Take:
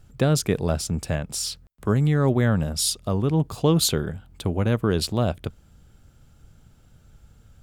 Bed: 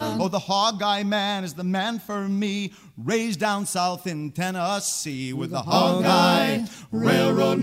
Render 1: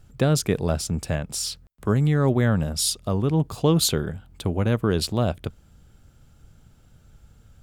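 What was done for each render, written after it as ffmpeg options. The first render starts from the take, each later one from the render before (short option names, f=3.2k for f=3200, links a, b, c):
-af anull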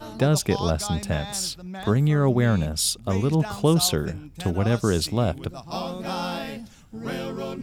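-filter_complex "[1:a]volume=-11.5dB[a];[0:a][a]amix=inputs=2:normalize=0"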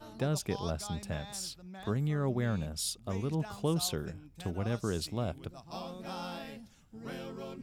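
-af "volume=-11.5dB"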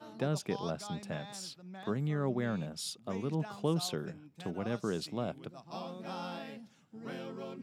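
-af "highpass=f=140:w=0.5412,highpass=f=140:w=1.3066,highshelf=f=7.3k:g=-11.5"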